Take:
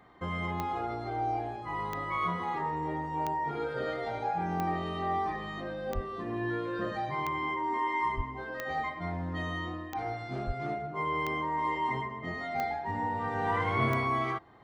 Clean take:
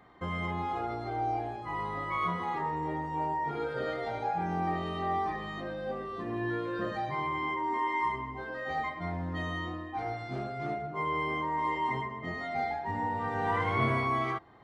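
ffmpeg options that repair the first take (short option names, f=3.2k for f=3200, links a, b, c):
-filter_complex "[0:a]adeclick=t=4,asplit=3[a][b][c];[a]afade=t=out:st=5.94:d=0.02[d];[b]highpass=f=140:w=0.5412,highpass=f=140:w=1.3066,afade=t=in:st=5.94:d=0.02,afade=t=out:st=6.06:d=0.02[e];[c]afade=t=in:st=6.06:d=0.02[f];[d][e][f]amix=inputs=3:normalize=0,asplit=3[g][h][i];[g]afade=t=out:st=8.16:d=0.02[j];[h]highpass=f=140:w=0.5412,highpass=f=140:w=1.3066,afade=t=in:st=8.16:d=0.02,afade=t=out:st=8.28:d=0.02[k];[i]afade=t=in:st=8.28:d=0.02[l];[j][k][l]amix=inputs=3:normalize=0,asplit=3[m][n][o];[m]afade=t=out:st=10.46:d=0.02[p];[n]highpass=f=140:w=0.5412,highpass=f=140:w=1.3066,afade=t=in:st=10.46:d=0.02,afade=t=out:st=10.58:d=0.02[q];[o]afade=t=in:st=10.58:d=0.02[r];[p][q][r]amix=inputs=3:normalize=0"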